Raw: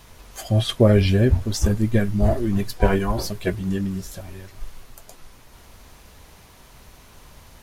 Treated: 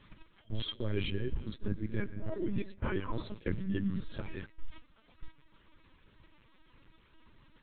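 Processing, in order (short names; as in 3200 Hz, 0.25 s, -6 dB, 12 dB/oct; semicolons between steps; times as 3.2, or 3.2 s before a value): reverb removal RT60 1.7 s; reverse; compressor 16:1, threshold -32 dBFS, peak gain reduction 22.5 dB; reverse; digital reverb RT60 1.4 s, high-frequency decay 0.9×, pre-delay 50 ms, DRR 14 dB; dynamic EQ 550 Hz, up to -3 dB, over -53 dBFS, Q 3.6; LPC vocoder at 8 kHz pitch kept; on a send: reverse echo 49 ms -14.5 dB; on the sum: gate -43 dBFS, range -13 dB; bell 720 Hz -14 dB 0.4 oct; gain +3 dB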